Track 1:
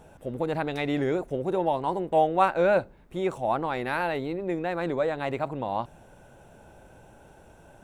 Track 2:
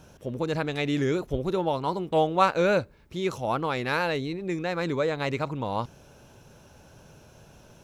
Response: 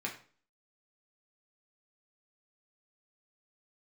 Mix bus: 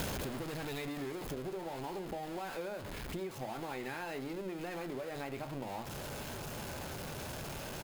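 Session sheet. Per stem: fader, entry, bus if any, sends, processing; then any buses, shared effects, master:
-3.5 dB, 0.00 s, send -3 dB, compressor 10:1, threshold -34 dBFS, peak gain reduction 18.5 dB
-2.0 dB, 0.6 ms, no send, infinite clipping; bell 8000 Hz -2.5 dB 0.42 oct; notch 5800 Hz, Q 12; auto duck -12 dB, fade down 1.70 s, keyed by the first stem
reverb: on, RT60 0.40 s, pre-delay 3 ms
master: notches 60/120/180 Hz; compressor, threshold -37 dBFS, peak gain reduction 9 dB

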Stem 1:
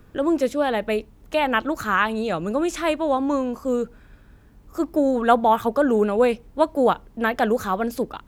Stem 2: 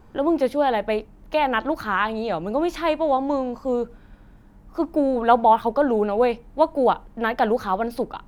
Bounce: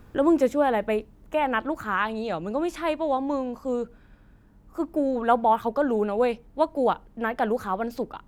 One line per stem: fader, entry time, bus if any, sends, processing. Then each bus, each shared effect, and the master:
-0.5 dB, 0.00 s, no send, auto duck -11 dB, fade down 1.90 s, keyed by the second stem
-8.5 dB, 0.00 s, no send, dry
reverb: off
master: dry

